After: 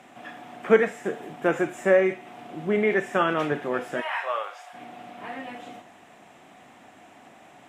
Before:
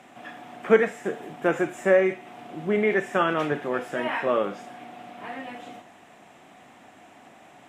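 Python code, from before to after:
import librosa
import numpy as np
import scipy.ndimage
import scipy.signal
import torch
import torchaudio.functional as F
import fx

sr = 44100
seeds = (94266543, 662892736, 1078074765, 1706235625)

y = fx.highpass(x, sr, hz=710.0, slope=24, at=(4.0, 4.73), fade=0.02)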